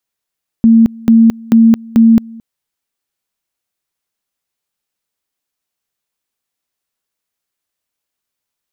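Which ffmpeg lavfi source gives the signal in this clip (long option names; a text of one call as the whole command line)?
ffmpeg -f lavfi -i "aevalsrc='pow(10,(-3-25*gte(mod(t,0.44),0.22))/20)*sin(2*PI*227*t)':duration=1.76:sample_rate=44100" out.wav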